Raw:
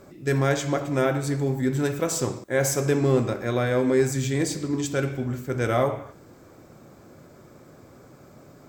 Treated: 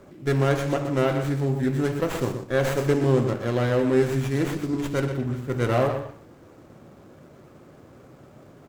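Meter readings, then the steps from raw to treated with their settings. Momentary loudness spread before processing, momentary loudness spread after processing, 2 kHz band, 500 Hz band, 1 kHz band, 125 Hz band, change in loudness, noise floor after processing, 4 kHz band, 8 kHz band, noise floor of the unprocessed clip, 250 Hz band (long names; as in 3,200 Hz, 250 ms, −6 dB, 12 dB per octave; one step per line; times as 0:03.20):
6 LU, 6 LU, −1.0 dB, +0.5 dB, +0.5 dB, +1.5 dB, +0.5 dB, −50 dBFS, −1.5 dB, −11.0 dB, −50 dBFS, +0.5 dB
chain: single-tap delay 123 ms −9.5 dB
windowed peak hold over 9 samples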